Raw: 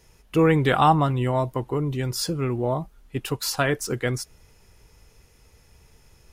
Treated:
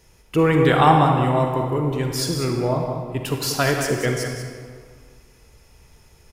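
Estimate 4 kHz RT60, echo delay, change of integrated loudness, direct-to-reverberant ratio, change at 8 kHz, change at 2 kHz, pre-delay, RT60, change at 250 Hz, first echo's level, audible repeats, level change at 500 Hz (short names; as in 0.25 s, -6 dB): 1.3 s, 0.19 s, +3.5 dB, 1.5 dB, +3.0 dB, +3.5 dB, 36 ms, 1.9 s, +3.5 dB, -8.5 dB, 1, +4.0 dB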